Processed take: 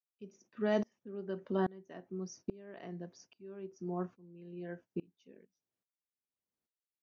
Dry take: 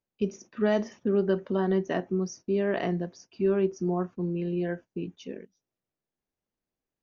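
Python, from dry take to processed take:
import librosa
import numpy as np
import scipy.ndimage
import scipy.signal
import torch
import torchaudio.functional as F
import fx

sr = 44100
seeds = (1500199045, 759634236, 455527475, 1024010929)

y = scipy.signal.sosfilt(scipy.signal.butter(2, 71.0, 'highpass', fs=sr, output='sos'), x)
y = fx.tremolo_decay(y, sr, direction='swelling', hz=1.2, depth_db=27)
y = F.gain(torch.from_numpy(y), -2.5).numpy()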